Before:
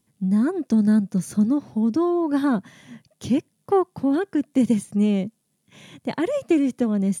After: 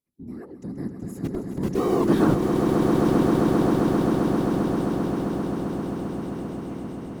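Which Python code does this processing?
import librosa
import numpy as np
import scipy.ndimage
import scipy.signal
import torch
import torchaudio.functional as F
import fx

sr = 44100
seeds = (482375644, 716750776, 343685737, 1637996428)

p1 = fx.doppler_pass(x, sr, speed_mps=38, closest_m=10.0, pass_at_s=2.15)
p2 = fx.schmitt(p1, sr, flips_db=-24.0)
p3 = p1 + (p2 * 10.0 ** (-3.0 / 20.0))
p4 = fx.whisperise(p3, sr, seeds[0])
y = fx.echo_swell(p4, sr, ms=132, loudest=8, wet_db=-6)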